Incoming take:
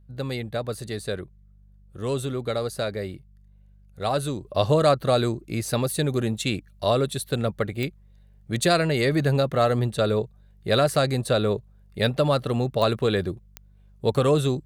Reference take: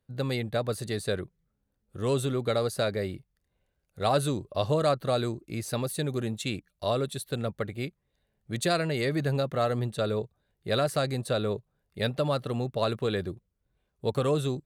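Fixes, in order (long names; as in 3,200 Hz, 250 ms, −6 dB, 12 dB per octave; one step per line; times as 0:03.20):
click removal
hum removal 49.5 Hz, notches 4
level 0 dB, from 0:04.45 −6 dB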